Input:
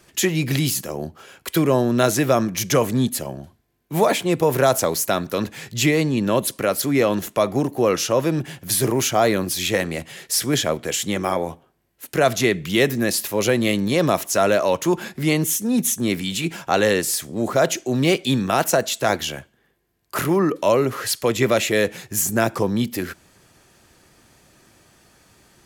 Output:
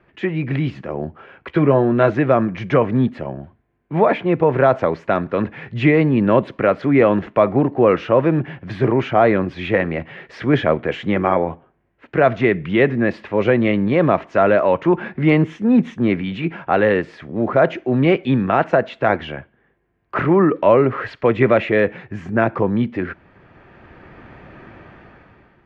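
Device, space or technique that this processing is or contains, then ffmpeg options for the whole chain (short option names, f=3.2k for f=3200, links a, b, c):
action camera in a waterproof case: -filter_complex "[0:a]asettb=1/sr,asplit=3[a][b][c];[a]atrim=end=1.484[d];[b]atrim=start=1.48:end=2.1,asetpts=PTS-STARTPTS,afade=t=in:d=0.004:c=qsin,afade=t=out:st=0.616:d=0.004:c=qsin,asplit=2[e][f];[f]adelay=14,volume=-8dB[g];[e][g]amix=inputs=2:normalize=0,atrim=end_sample=27342[h];[c]atrim=start=2.096[i];[d][h]acrossfade=d=0.004:c1=hsin:c2=qsin[j];[j][i]acrossfade=d=0.004:c1=qsin:c2=hsin,lowpass=f=2.3k:w=0.5412,lowpass=f=2.3k:w=1.3066,dynaudnorm=f=230:g=7:m=16dB,volume=-1dB" -ar 48000 -c:a aac -b:a 96k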